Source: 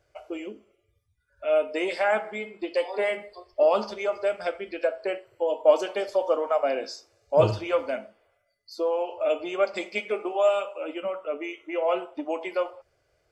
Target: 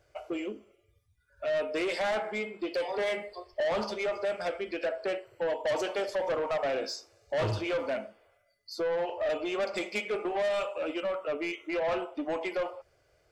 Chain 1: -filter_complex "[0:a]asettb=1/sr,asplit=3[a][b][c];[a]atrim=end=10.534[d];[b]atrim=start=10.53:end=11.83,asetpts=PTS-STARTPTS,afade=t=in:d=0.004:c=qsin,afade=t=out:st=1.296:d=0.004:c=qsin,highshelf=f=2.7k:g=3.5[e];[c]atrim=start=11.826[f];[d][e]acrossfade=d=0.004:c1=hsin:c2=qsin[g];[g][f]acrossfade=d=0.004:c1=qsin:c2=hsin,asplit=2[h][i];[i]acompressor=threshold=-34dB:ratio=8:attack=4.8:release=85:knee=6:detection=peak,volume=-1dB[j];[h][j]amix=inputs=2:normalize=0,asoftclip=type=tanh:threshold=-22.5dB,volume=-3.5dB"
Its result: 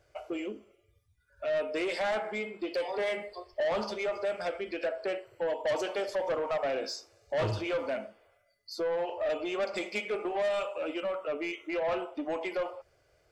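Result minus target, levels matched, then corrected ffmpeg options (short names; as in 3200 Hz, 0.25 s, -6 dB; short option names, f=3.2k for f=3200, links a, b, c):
compressor: peak gain reduction +9 dB
-filter_complex "[0:a]asettb=1/sr,asplit=3[a][b][c];[a]atrim=end=10.534[d];[b]atrim=start=10.53:end=11.83,asetpts=PTS-STARTPTS,afade=t=in:d=0.004:c=qsin,afade=t=out:st=1.296:d=0.004:c=qsin,highshelf=f=2.7k:g=3.5[e];[c]atrim=start=11.826[f];[d][e]acrossfade=d=0.004:c1=hsin:c2=qsin[g];[g][f]acrossfade=d=0.004:c1=qsin:c2=hsin,asplit=2[h][i];[i]acompressor=threshold=-24dB:ratio=8:attack=4.8:release=85:knee=6:detection=peak,volume=-1dB[j];[h][j]amix=inputs=2:normalize=0,asoftclip=type=tanh:threshold=-22.5dB,volume=-3.5dB"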